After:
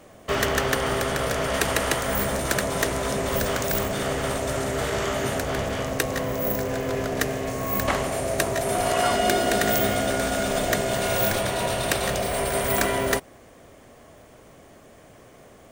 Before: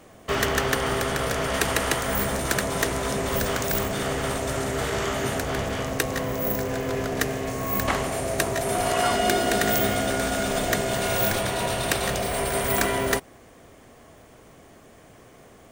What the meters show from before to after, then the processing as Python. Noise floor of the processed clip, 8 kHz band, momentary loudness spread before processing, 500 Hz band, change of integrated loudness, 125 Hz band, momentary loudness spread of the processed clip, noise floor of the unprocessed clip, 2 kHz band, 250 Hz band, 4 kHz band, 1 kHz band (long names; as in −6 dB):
−50 dBFS, 0.0 dB, 5 LU, +1.5 dB, +0.5 dB, 0.0 dB, 5 LU, −51 dBFS, 0.0 dB, 0.0 dB, 0.0 dB, +0.5 dB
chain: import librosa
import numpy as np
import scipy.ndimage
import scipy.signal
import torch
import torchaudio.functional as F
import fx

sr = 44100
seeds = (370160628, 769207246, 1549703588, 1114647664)

y = fx.peak_eq(x, sr, hz=580.0, db=4.5, octaves=0.24)